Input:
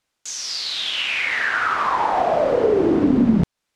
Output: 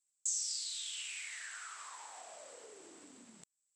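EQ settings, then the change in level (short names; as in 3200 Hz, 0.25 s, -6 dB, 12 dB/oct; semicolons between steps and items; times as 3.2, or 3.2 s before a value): band-pass 7800 Hz, Q 14; +9.5 dB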